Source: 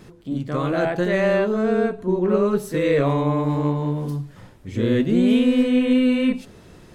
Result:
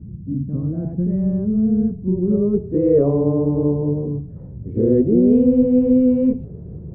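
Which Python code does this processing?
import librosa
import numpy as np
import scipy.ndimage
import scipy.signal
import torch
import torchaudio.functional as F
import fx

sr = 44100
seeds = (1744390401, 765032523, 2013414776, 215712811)

y = fx.filter_sweep_lowpass(x, sr, from_hz=210.0, to_hz=440.0, start_s=1.92, end_s=3.03, q=2.3)
y = fx.dmg_noise_band(y, sr, seeds[0], low_hz=57.0, high_hz=180.0, level_db=-34.0)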